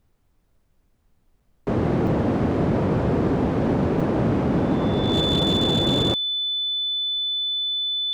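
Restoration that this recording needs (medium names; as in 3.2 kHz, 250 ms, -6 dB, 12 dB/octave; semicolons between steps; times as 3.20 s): clip repair -14.5 dBFS; band-stop 3.5 kHz, Q 30; interpolate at 1.40/2.07/4.00 s, 4.6 ms; expander -55 dBFS, range -21 dB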